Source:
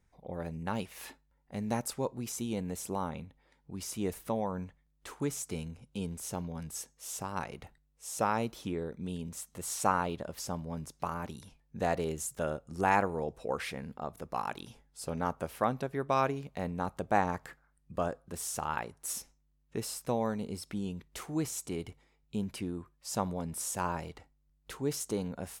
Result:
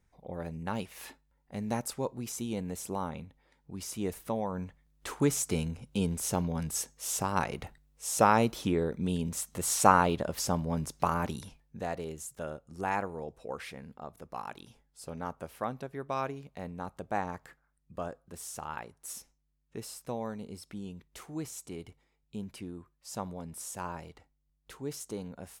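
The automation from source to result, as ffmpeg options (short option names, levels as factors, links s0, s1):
-af "volume=2.24,afade=t=in:st=4.49:d=0.65:silence=0.446684,afade=t=out:st=11.38:d=0.45:silence=0.251189"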